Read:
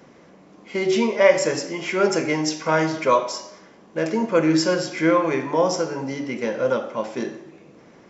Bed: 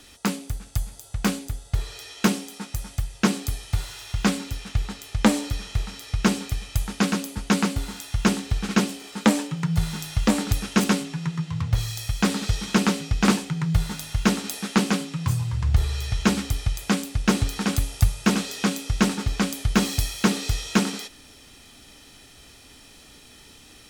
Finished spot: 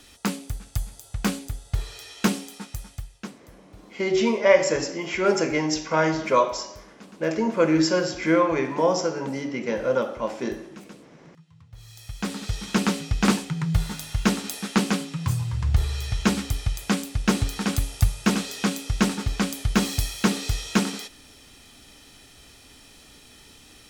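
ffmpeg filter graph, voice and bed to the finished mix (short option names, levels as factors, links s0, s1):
-filter_complex "[0:a]adelay=3250,volume=0.841[s0];[1:a]volume=13.3,afade=t=out:st=2.5:d=0.85:silence=0.0668344,afade=t=in:st=11.73:d=1.24:silence=0.0630957[s1];[s0][s1]amix=inputs=2:normalize=0"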